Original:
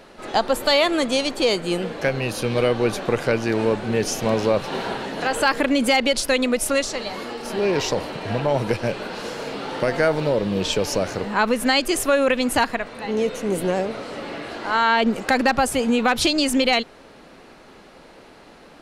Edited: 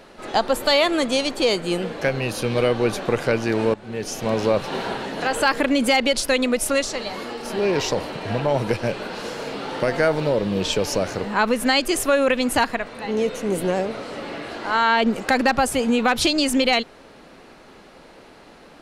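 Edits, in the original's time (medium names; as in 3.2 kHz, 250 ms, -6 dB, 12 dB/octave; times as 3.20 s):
3.74–4.46 s: fade in, from -16 dB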